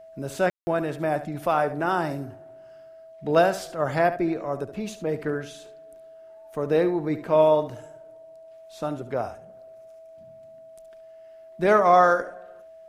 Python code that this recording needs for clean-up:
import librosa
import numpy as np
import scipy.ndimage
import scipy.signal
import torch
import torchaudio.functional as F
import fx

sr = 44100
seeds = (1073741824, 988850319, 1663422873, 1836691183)

y = fx.notch(x, sr, hz=650.0, q=30.0)
y = fx.fix_ambience(y, sr, seeds[0], print_start_s=2.61, print_end_s=3.11, start_s=0.5, end_s=0.67)
y = fx.fix_echo_inverse(y, sr, delay_ms=71, level_db=-12.5)